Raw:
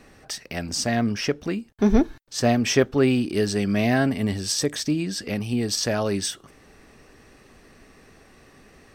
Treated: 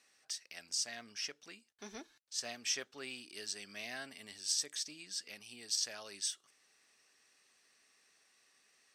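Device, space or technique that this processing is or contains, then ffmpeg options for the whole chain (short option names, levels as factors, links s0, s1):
piezo pickup straight into a mixer: -af "lowpass=7500,aderivative,volume=0.562"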